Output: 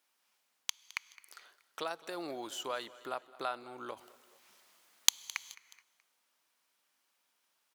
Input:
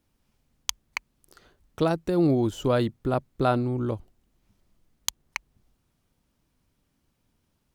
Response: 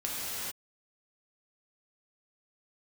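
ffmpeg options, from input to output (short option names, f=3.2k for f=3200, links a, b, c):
-filter_complex "[0:a]highpass=960,acompressor=threshold=-42dB:ratio=2,asplit=3[a][b][c];[a]afade=t=out:st=3.96:d=0.02[d];[b]aeval=exprs='0.841*sin(PI/2*2.51*val(0)/0.841)':c=same,afade=t=in:st=3.96:d=0.02,afade=t=out:st=5.22:d=0.02[e];[c]afade=t=in:st=5.22:d=0.02[f];[d][e][f]amix=inputs=3:normalize=0,aecho=1:1:213|426|639:0.1|0.042|0.0176,asplit=2[g][h];[1:a]atrim=start_sample=2205[i];[h][i]afir=irnorm=-1:irlink=0,volume=-26.5dB[j];[g][j]amix=inputs=2:normalize=0,volume=1.5dB"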